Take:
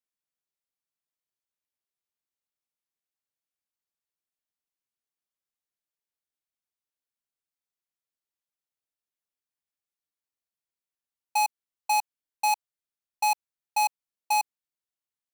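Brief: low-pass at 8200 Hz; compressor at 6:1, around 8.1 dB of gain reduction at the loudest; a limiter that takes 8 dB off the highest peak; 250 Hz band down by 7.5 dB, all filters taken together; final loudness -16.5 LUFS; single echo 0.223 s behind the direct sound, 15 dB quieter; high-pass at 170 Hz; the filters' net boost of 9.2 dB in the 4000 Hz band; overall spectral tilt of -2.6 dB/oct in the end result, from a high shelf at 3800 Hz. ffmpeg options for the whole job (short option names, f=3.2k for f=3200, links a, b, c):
-af "highpass=170,lowpass=8.2k,equalizer=f=250:t=o:g=-8,highshelf=f=3.8k:g=6.5,equalizer=f=4k:t=o:g=6,acompressor=threshold=-25dB:ratio=6,alimiter=limit=-20.5dB:level=0:latency=1,aecho=1:1:223:0.178,volume=19dB"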